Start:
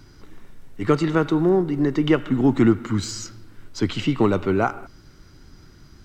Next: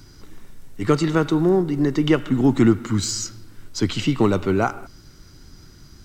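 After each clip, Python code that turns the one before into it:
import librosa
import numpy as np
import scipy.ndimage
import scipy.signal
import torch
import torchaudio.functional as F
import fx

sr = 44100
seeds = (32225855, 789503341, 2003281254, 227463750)

y = fx.bass_treble(x, sr, bass_db=2, treble_db=8)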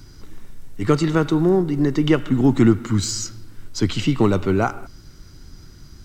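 y = fx.low_shelf(x, sr, hz=120.0, db=5.0)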